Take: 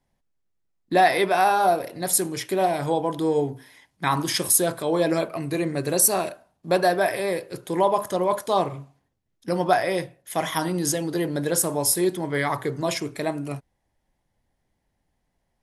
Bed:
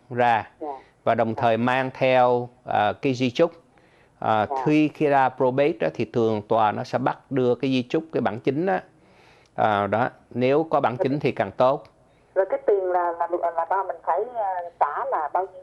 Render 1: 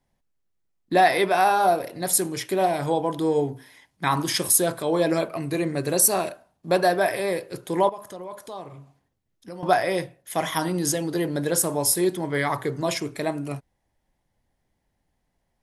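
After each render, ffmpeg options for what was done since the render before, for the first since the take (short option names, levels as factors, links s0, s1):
-filter_complex "[0:a]asettb=1/sr,asplit=3[s0][s1][s2];[s0]atrim=end=7.894[s3];[s1]atrim=start=7.89:end=9.63,asetpts=PTS-STARTPTS,afade=t=in:d=0.004:c=qsin,afade=t=out:st=1.736:d=0.004:c=qsin,acompressor=threshold=0.00562:ratio=2:attack=3.2:release=140:knee=1:detection=peak[s4];[s2]atrim=start=9.626[s5];[s3][s4]acrossfade=d=0.004:c1=hsin:c2=qsin[s6];[s6][s5]acrossfade=d=0.004:c1=qsin:c2=hsin"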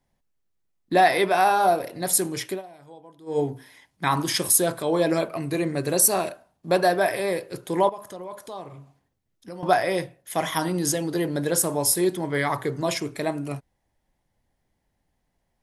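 -filter_complex "[0:a]asplit=3[s0][s1][s2];[s0]atrim=end=2.62,asetpts=PTS-STARTPTS,afade=t=out:st=2.48:d=0.14:silence=0.0749894[s3];[s1]atrim=start=2.62:end=3.26,asetpts=PTS-STARTPTS,volume=0.075[s4];[s2]atrim=start=3.26,asetpts=PTS-STARTPTS,afade=t=in:d=0.14:silence=0.0749894[s5];[s3][s4][s5]concat=n=3:v=0:a=1"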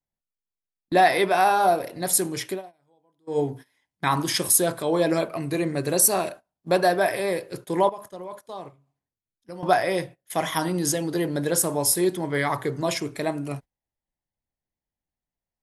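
-af "agate=range=0.126:threshold=0.0112:ratio=16:detection=peak"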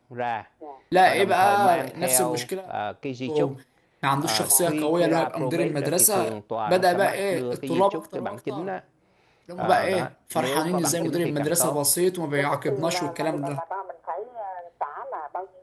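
-filter_complex "[1:a]volume=0.376[s0];[0:a][s0]amix=inputs=2:normalize=0"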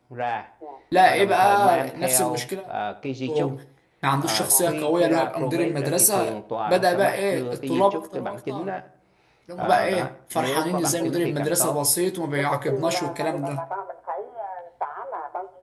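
-filter_complex "[0:a]asplit=2[s0][s1];[s1]adelay=15,volume=0.447[s2];[s0][s2]amix=inputs=2:normalize=0,asplit=2[s3][s4];[s4]adelay=87,lowpass=f=2100:p=1,volume=0.141,asplit=2[s5][s6];[s6]adelay=87,lowpass=f=2100:p=1,volume=0.38,asplit=2[s7][s8];[s8]adelay=87,lowpass=f=2100:p=1,volume=0.38[s9];[s3][s5][s7][s9]amix=inputs=4:normalize=0"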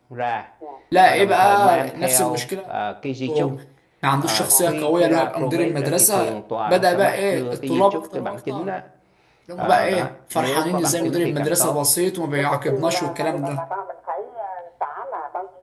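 -af "volume=1.41,alimiter=limit=0.794:level=0:latency=1"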